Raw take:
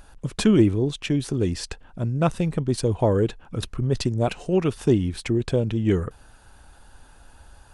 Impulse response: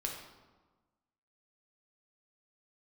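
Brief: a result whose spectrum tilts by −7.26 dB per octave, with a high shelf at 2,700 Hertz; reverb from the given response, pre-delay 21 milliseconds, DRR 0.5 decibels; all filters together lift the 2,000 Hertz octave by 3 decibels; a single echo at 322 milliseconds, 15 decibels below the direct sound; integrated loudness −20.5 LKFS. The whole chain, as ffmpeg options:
-filter_complex "[0:a]equalizer=frequency=2000:width_type=o:gain=7,highshelf=frequency=2700:gain=-6.5,aecho=1:1:322:0.178,asplit=2[link_01][link_02];[1:a]atrim=start_sample=2205,adelay=21[link_03];[link_02][link_03]afir=irnorm=-1:irlink=0,volume=-2dB[link_04];[link_01][link_04]amix=inputs=2:normalize=0"

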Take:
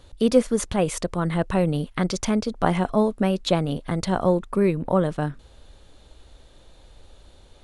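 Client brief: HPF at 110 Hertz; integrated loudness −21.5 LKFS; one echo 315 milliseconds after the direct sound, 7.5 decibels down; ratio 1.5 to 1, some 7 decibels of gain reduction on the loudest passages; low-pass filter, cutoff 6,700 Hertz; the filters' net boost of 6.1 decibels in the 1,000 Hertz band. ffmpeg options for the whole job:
ffmpeg -i in.wav -af "highpass=110,lowpass=6700,equalizer=frequency=1000:width_type=o:gain=8,acompressor=threshold=-30dB:ratio=1.5,aecho=1:1:315:0.422,volume=5dB" out.wav

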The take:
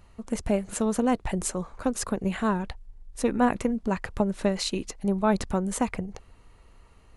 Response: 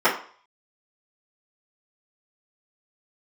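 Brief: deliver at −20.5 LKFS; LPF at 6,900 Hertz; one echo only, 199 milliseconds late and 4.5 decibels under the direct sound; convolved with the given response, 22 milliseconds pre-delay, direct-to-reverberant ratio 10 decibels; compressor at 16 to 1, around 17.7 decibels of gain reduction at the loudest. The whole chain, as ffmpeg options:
-filter_complex "[0:a]lowpass=6900,acompressor=threshold=-35dB:ratio=16,aecho=1:1:199:0.596,asplit=2[link_01][link_02];[1:a]atrim=start_sample=2205,adelay=22[link_03];[link_02][link_03]afir=irnorm=-1:irlink=0,volume=-30.5dB[link_04];[link_01][link_04]amix=inputs=2:normalize=0,volume=19.5dB"

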